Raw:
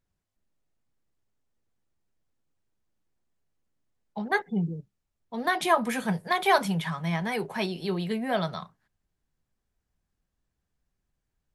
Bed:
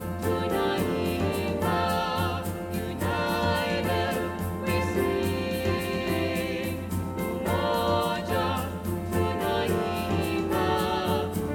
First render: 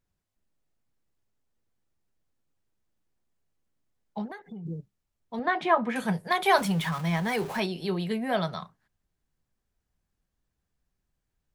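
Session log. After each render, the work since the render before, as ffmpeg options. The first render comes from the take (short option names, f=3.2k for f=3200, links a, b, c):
-filter_complex "[0:a]asplit=3[a][b][c];[a]afade=t=out:st=4.25:d=0.02[d];[b]acompressor=threshold=-37dB:ratio=16:attack=3.2:release=140:knee=1:detection=peak,afade=t=in:st=4.25:d=0.02,afade=t=out:st=4.65:d=0.02[e];[c]afade=t=in:st=4.65:d=0.02[f];[d][e][f]amix=inputs=3:normalize=0,asettb=1/sr,asplit=3[g][h][i];[g]atrim=end=5.394[j];[h]atrim=start=5.39:end=5.96,asetpts=PTS-STARTPTS,afade=t=in:d=0.004:c=qsin,afade=t=out:st=0.566:d=0.004:c=qsin,highpass=110,lowpass=2.5k[k];[i]atrim=start=5.956[l];[j][k]acrossfade=d=0.004:c1=hsin:c2=qsin[m];[m][l]acrossfade=d=0.004:c1=qsin:c2=hsin,asettb=1/sr,asplit=3[n][o][p];[n]atrim=end=6.584[q];[o]atrim=start=6.58:end=7.6,asetpts=PTS-STARTPTS,afade=t=in:d=0.004:c=qsin,afade=t=out:st=1.016:d=0.004:c=qsin,aeval=exprs='val(0)+0.5*0.0158*sgn(val(0))':c=same[r];[p]atrim=start=7.596[s];[q][r]acrossfade=d=0.004:c1=hsin:c2=qsin[t];[t][s]acrossfade=d=0.004:c1=qsin:c2=hsin"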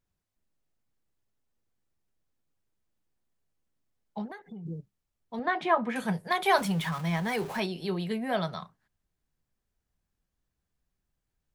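-af "volume=-2dB"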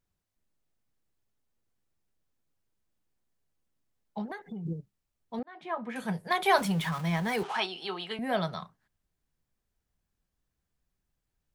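-filter_complex "[0:a]asettb=1/sr,asplit=3[a][b][c];[a]atrim=end=7.434[d];[b]atrim=start=7.43:end=8.19,asetpts=PTS-STARTPTS,afade=t=in:d=0.004:c=qsin,afade=t=out:st=0.756:d=0.004:c=qsin,highpass=450,equalizer=f=560:t=q:w=4:g=-9,equalizer=f=810:t=q:w=4:g=8,equalizer=f=1.3k:t=q:w=4:g=9,equalizer=f=3.1k:t=q:w=4:g=9,equalizer=f=7.5k:t=q:w=4:g=-4,lowpass=f=8.9k:w=0.5412,lowpass=f=8.9k:w=1.3066[e];[c]atrim=start=8.186[f];[d][e]acrossfade=d=0.004:c1=hsin:c2=qsin[g];[g][f]acrossfade=d=0.004:c1=qsin:c2=hsin,asplit=4[h][i][j][k];[h]atrim=end=4.282[l];[i]atrim=start=4.278:end=4.732,asetpts=PTS-STARTPTS,volume=3.5dB[m];[j]atrim=start=4.728:end=5.43,asetpts=PTS-STARTPTS,afade=t=out:st=0.698:d=0.004:c=hsin[n];[k]atrim=start=5.43,asetpts=PTS-STARTPTS,afade=t=in:d=0.92[o];[l][m]acrossfade=d=0.004:c1=hsin:c2=hsin[p];[n][o]concat=n=2:v=0:a=1[q];[p][q]acrossfade=d=0.004:c1=hsin:c2=hsin"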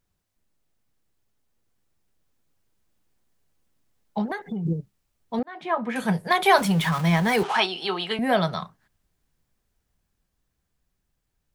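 -filter_complex "[0:a]asplit=2[a][b];[b]alimiter=limit=-19dB:level=0:latency=1:release=500,volume=0dB[c];[a][c]amix=inputs=2:normalize=0,dynaudnorm=f=260:g=17:m=3.5dB"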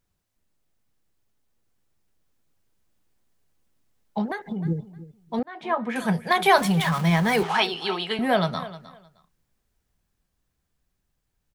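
-af "aecho=1:1:309|618:0.15|0.0284"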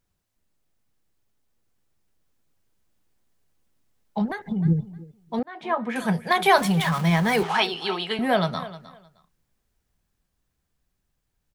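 -filter_complex "[0:a]asplit=3[a][b][c];[a]afade=t=out:st=4.2:d=0.02[d];[b]asubboost=boost=3:cutoff=210,afade=t=in:st=4.2:d=0.02,afade=t=out:st=4.96:d=0.02[e];[c]afade=t=in:st=4.96:d=0.02[f];[d][e][f]amix=inputs=3:normalize=0"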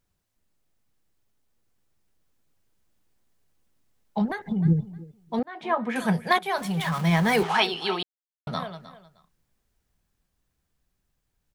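-filter_complex "[0:a]asplit=4[a][b][c][d];[a]atrim=end=6.39,asetpts=PTS-STARTPTS,afade=t=out:st=6.386:d=0.004:c=hsin:silence=0.158489[e];[b]atrim=start=6.39:end=8.03,asetpts=PTS-STARTPTS,afade=t=in:d=0.84:silence=0.158489,afade=t=out:st=1.636:d=0.004:c=hsin[f];[c]atrim=start=8.03:end=8.47,asetpts=PTS-STARTPTS,volume=0[g];[d]atrim=start=8.47,asetpts=PTS-STARTPTS,afade=t=in:d=0.004:c=hsin[h];[e][f][g][h]concat=n=4:v=0:a=1"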